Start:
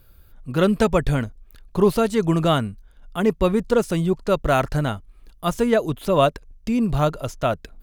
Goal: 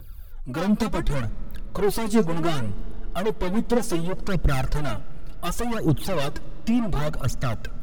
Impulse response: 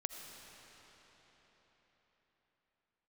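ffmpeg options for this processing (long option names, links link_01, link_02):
-filter_complex "[0:a]acrossover=split=330|3000[link_01][link_02][link_03];[link_02]acompressor=threshold=-22dB:ratio=6[link_04];[link_01][link_04][link_03]amix=inputs=3:normalize=0,asoftclip=type=tanh:threshold=-25dB,aphaser=in_gain=1:out_gain=1:delay=4.6:decay=0.69:speed=0.68:type=triangular,asplit=2[link_05][link_06];[1:a]atrim=start_sample=2205,lowshelf=frequency=290:gain=11[link_07];[link_06][link_07]afir=irnorm=-1:irlink=0,volume=-15dB[link_08];[link_05][link_08]amix=inputs=2:normalize=0"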